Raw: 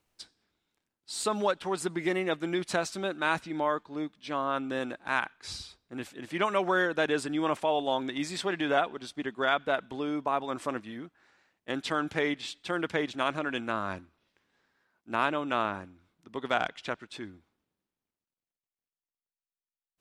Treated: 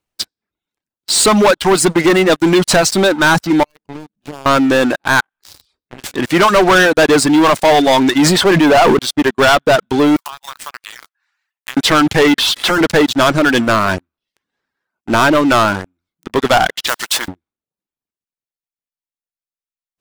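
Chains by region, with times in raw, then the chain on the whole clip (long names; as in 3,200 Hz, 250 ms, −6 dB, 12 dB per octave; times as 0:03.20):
0:03.63–0:04.46: running median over 41 samples + downward compressor 16 to 1, threshold −46 dBFS
0:05.20–0:06.04: downward compressor 3 to 1, threshold −50 dBFS + micro pitch shift up and down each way 38 cents
0:08.14–0:08.99: high-shelf EQ 2,800 Hz −8.5 dB + level that may fall only so fast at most 36 dB per second
0:10.16–0:11.77: one scale factor per block 5 bits + inverse Chebyshev high-pass filter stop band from 170 Hz, stop band 80 dB + downward compressor 8 to 1, threshold −47 dBFS
0:12.38–0:12.81: high-shelf EQ 11,000 Hz −8.5 dB + mid-hump overdrive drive 33 dB, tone 4,800 Hz, clips at −17 dBFS + downward compressor 8 to 1, threshold −37 dBFS
0:16.87–0:17.28: mu-law and A-law mismatch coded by mu + high-pass filter 1,100 Hz + every bin compressed towards the loudest bin 2 to 1
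whole clip: reverb reduction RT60 0.56 s; dynamic equaliser 2,400 Hz, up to −8 dB, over −54 dBFS, Q 5.5; leveller curve on the samples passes 5; level +7 dB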